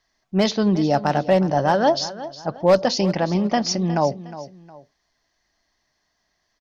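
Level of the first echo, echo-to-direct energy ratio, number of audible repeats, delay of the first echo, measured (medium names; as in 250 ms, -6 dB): -15.0 dB, -14.5 dB, 2, 361 ms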